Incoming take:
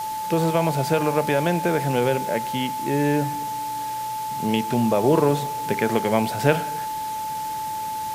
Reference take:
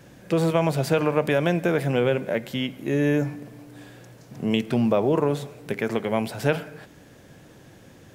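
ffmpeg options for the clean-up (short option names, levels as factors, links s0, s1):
-af "bandreject=f=870:w=30,afwtdn=0.011,asetnsamples=n=441:p=0,asendcmd='5.04 volume volume -3.5dB',volume=1"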